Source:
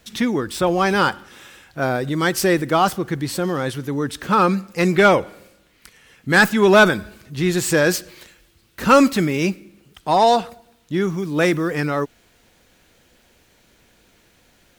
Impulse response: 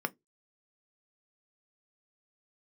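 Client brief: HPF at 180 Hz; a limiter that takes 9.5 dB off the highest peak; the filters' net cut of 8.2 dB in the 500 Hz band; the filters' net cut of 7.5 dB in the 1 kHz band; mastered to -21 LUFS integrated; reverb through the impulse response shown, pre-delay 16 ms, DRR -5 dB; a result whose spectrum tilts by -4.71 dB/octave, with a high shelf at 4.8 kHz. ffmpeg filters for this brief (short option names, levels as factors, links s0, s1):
-filter_complex "[0:a]highpass=180,equalizer=f=500:t=o:g=-9,equalizer=f=1000:t=o:g=-8,highshelf=f=4800:g=4,alimiter=limit=0.251:level=0:latency=1,asplit=2[s0][s1];[1:a]atrim=start_sample=2205,adelay=16[s2];[s1][s2]afir=irnorm=-1:irlink=0,volume=0.944[s3];[s0][s3]amix=inputs=2:normalize=0,volume=0.794"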